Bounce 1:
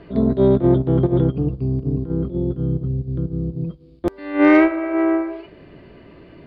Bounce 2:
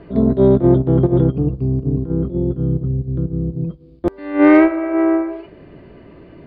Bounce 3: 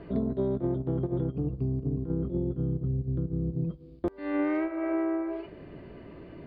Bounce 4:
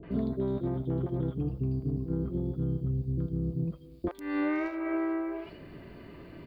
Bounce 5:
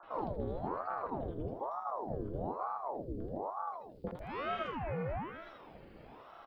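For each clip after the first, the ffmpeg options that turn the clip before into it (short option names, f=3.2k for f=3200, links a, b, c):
-af "highshelf=f=2.4k:g=-9,volume=3dB"
-af "acompressor=threshold=-21dB:ratio=10,volume=-4.5dB"
-filter_complex "[0:a]acrossover=split=500|3200[a][b][c];[b]adelay=30[d];[c]adelay=110[e];[a][d][e]amix=inputs=3:normalize=0,crystalizer=i=4:c=0,volume=-1dB"
-filter_complex "[0:a]asplit=2[a][b];[b]adelay=80,lowpass=f=2.3k:p=1,volume=-5dB,asplit=2[c][d];[d]adelay=80,lowpass=f=2.3k:p=1,volume=0.55,asplit=2[e][f];[f]adelay=80,lowpass=f=2.3k:p=1,volume=0.55,asplit=2[g][h];[h]adelay=80,lowpass=f=2.3k:p=1,volume=0.55,asplit=2[i][j];[j]adelay=80,lowpass=f=2.3k:p=1,volume=0.55,asplit=2[k][l];[l]adelay=80,lowpass=f=2.3k:p=1,volume=0.55,asplit=2[m][n];[n]adelay=80,lowpass=f=2.3k:p=1,volume=0.55[o];[a][c][e][g][i][k][m][o]amix=inputs=8:normalize=0,aeval=exprs='val(0)*sin(2*PI*580*n/s+580*0.75/1.1*sin(2*PI*1.1*n/s))':c=same,volume=-5.5dB"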